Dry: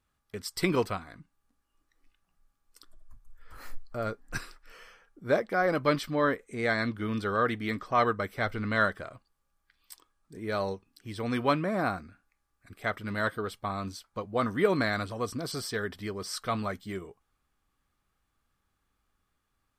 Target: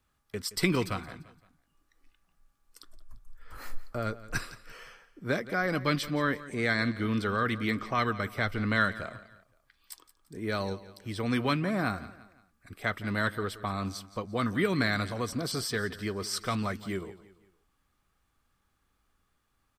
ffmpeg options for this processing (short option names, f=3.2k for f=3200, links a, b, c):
-filter_complex "[0:a]acrossover=split=300|1400|7500[a][b][c][d];[b]acompressor=threshold=-37dB:ratio=6[e];[a][e][c][d]amix=inputs=4:normalize=0,aecho=1:1:172|344|516:0.141|0.0579|0.0237,volume=3dB"